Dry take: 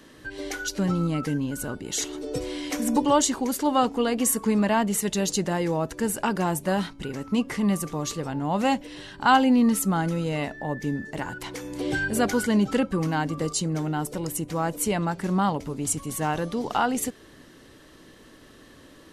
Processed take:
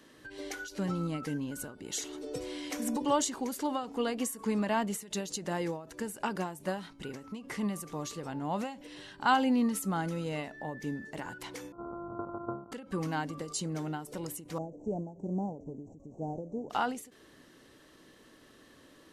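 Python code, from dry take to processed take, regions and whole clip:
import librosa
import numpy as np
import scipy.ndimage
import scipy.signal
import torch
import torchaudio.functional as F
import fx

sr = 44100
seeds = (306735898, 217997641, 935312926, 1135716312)

y = fx.chain(x, sr, fx.sample_sort(block=128),
    fx.level_steps(step_db=11),
    fx.brickwall_lowpass(high_hz=1500.0), at=(11.72, 12.72))
y = fx.chain(y, sr, fx.cvsd(bps=32000),
    fx.cheby2_bandstop(low_hz=1200.0, high_hz=5000.0, order=4, stop_db=40), at=(14.58, 16.7))
y = fx.low_shelf(y, sr, hz=110.0, db=-8.5)
y = fx.end_taper(y, sr, db_per_s=110.0)
y = y * 10.0 ** (-6.5 / 20.0)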